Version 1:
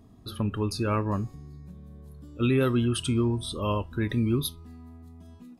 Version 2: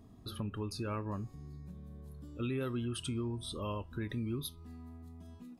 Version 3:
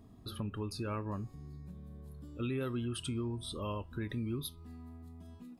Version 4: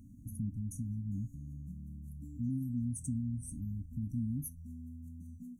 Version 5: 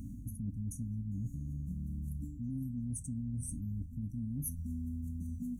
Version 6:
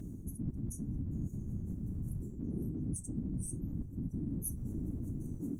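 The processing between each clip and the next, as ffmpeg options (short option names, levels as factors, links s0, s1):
-af "acompressor=threshold=0.0126:ratio=2,volume=0.708"
-af "equalizer=f=6100:w=4.7:g=-3.5"
-af "asoftclip=type=tanh:threshold=0.0398,afftfilt=real='re*(1-between(b*sr/4096,300,5700))':imag='im*(1-between(b*sr/4096,300,5700))':win_size=4096:overlap=0.75,volume=1.41"
-af "areverse,acompressor=threshold=0.00501:ratio=10,areverse,aeval=exprs='val(0)+0.000891*(sin(2*PI*50*n/s)+sin(2*PI*2*50*n/s)/2+sin(2*PI*3*50*n/s)/3+sin(2*PI*4*50*n/s)/4+sin(2*PI*5*50*n/s)/5)':c=same,volume=3.35"
-af "afftfilt=real='hypot(re,im)*cos(2*PI*random(0))':imag='hypot(re,im)*sin(2*PI*random(1))':win_size=512:overlap=0.75,volume=2.11"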